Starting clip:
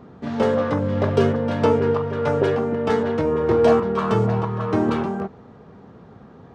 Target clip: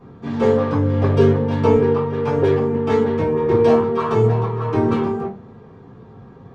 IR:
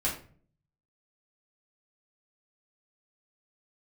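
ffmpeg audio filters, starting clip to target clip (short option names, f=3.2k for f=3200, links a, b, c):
-filter_complex "[0:a]asettb=1/sr,asplit=3[a][b][c];[a]atrim=end=1.764[d];[b]atrim=start=1.76:end=2.36,asetpts=PTS-STARTPTS,afade=t=in:d=0.004:c=qsin,afade=t=out:st=0.596:d=0.004:c=qsin,highpass=120[e];[c]atrim=start=2.356[f];[d][e]acrossfade=d=0.004:c1=hsin:c2=qsin[g];[g][f]acrossfade=d=0.004:c1=qsin:c2=hsin[h];[1:a]atrim=start_sample=2205,asetrate=66150,aresample=44100[i];[h][i]afir=irnorm=-1:irlink=0,volume=-3.5dB"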